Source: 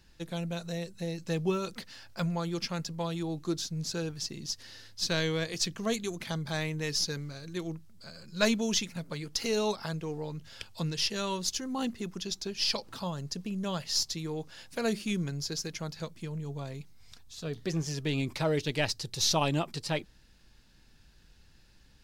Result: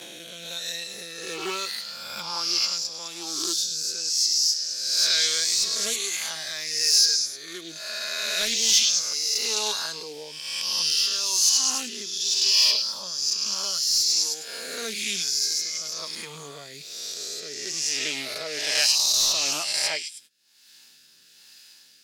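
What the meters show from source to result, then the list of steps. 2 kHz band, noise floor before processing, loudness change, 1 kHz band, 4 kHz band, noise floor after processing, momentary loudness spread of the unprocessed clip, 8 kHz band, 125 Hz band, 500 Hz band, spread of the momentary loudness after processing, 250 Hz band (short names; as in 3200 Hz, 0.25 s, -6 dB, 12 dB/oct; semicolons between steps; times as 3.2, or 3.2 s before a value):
+6.0 dB, -60 dBFS, +10.0 dB, 0.0 dB, +13.0 dB, -54 dBFS, 10 LU, +15.0 dB, under -15 dB, -4.5 dB, 16 LU, -11.0 dB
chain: spectral swells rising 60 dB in 1.55 s; HPF 180 Hz 12 dB/oct; tilt +4.5 dB/oct; delay with a stepping band-pass 0.104 s, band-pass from 3600 Hz, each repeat 0.7 oct, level -3 dB; gate -44 dBFS, range -18 dB; upward compressor, threshold -22 dBFS; soft clip -9.5 dBFS, distortion -17 dB; spectral noise reduction 6 dB; rotary speaker horn 1.1 Hz; Doppler distortion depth 0.14 ms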